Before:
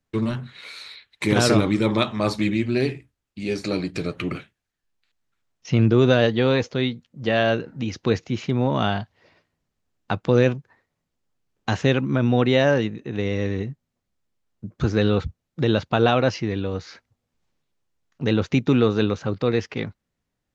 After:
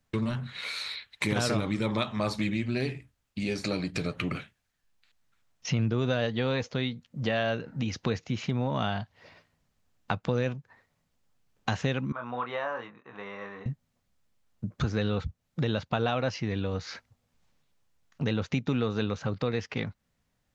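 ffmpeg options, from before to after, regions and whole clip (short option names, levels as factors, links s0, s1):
-filter_complex "[0:a]asettb=1/sr,asplit=3[s0][s1][s2];[s0]atrim=end=12.124[s3];[s1]atrim=start=12.12:end=13.66,asetpts=PTS-STARTPTS,afade=t=in:d=0.004:c=qsin,afade=t=out:st=1.536:d=0.004:c=qsin,bandpass=f=1100:t=q:w=3.8,asplit=2[s4][s5];[s5]adelay=25,volume=0.562[s6];[s4][s6]amix=inputs=2:normalize=0,atrim=end_sample=67914[s7];[s2]atrim=start=13.656[s8];[s3][s7]acrossfade=d=0.004:c1=hsin:c2=qsin[s9];[s9][s8]acrossfade=d=0.004:c1=qsin:c2=hsin,equalizer=f=350:t=o:w=0.64:g=-6.5,acompressor=threshold=0.0178:ratio=2.5,volume=1.68"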